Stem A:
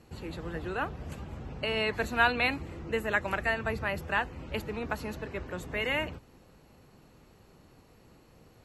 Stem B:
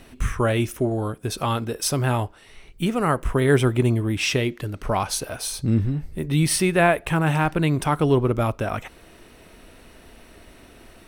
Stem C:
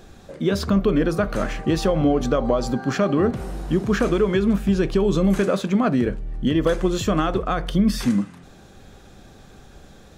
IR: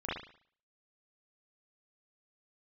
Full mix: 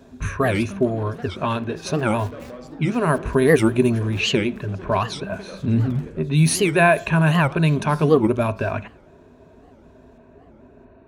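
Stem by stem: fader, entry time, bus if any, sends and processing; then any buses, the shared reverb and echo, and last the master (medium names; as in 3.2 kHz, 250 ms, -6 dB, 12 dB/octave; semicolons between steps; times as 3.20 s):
-2.5 dB, 0.00 s, no send, no echo send, flange 1.6 Hz, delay 6.4 ms, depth 8.2 ms, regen -84%; bass shelf 120 Hz +4.5 dB; Schmitt trigger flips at -26 dBFS
0.0 dB, 0.00 s, send -24 dB, no echo send, level-controlled noise filter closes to 790 Hz, open at -15.5 dBFS; rippled EQ curve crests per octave 1.5, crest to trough 11 dB
-8.0 dB, 0.00 s, send -19 dB, echo send -17 dB, hard clipper -16 dBFS, distortion -14 dB; auto duck -11 dB, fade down 1.10 s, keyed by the second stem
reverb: on, pre-delay 36 ms
echo: delay 671 ms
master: high-pass 58 Hz; warped record 78 rpm, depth 250 cents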